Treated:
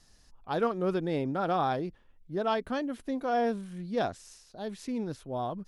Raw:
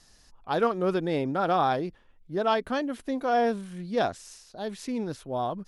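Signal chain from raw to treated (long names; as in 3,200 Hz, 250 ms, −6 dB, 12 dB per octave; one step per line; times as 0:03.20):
low-shelf EQ 320 Hz +4.5 dB
level −5 dB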